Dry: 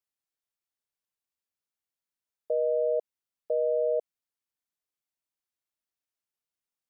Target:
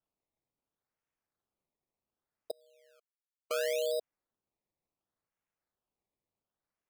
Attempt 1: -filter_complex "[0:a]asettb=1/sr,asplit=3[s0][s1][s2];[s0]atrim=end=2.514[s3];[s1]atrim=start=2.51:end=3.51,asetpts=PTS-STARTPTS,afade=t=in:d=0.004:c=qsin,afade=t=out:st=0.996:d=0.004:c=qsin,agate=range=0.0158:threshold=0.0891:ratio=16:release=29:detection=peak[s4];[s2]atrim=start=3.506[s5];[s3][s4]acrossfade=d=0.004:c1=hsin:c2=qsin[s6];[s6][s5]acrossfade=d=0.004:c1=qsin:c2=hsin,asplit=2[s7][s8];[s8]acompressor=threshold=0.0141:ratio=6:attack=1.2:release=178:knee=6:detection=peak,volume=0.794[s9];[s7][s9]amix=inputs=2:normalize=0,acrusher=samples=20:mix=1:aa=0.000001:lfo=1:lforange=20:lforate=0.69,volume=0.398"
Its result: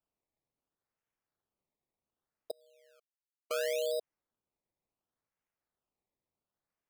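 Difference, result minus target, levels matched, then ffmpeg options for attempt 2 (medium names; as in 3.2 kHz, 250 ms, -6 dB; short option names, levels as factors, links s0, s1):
compression: peak gain reduction +5 dB
-filter_complex "[0:a]asettb=1/sr,asplit=3[s0][s1][s2];[s0]atrim=end=2.514[s3];[s1]atrim=start=2.51:end=3.51,asetpts=PTS-STARTPTS,afade=t=in:d=0.004:c=qsin,afade=t=out:st=0.996:d=0.004:c=qsin,agate=range=0.0158:threshold=0.0891:ratio=16:release=29:detection=peak[s4];[s2]atrim=start=3.506[s5];[s3][s4]acrossfade=d=0.004:c1=hsin:c2=qsin[s6];[s6][s5]acrossfade=d=0.004:c1=qsin:c2=hsin,asplit=2[s7][s8];[s8]acompressor=threshold=0.0282:ratio=6:attack=1.2:release=178:knee=6:detection=peak,volume=0.794[s9];[s7][s9]amix=inputs=2:normalize=0,acrusher=samples=20:mix=1:aa=0.000001:lfo=1:lforange=20:lforate=0.69,volume=0.398"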